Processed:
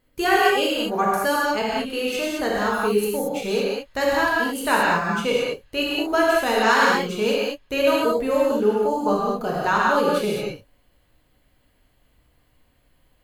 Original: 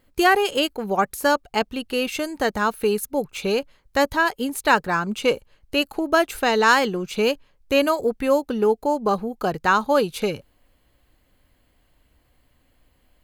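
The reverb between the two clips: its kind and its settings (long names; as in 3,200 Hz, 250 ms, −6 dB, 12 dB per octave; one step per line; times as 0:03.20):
reverb whose tail is shaped and stops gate 250 ms flat, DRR −5.5 dB
level −6 dB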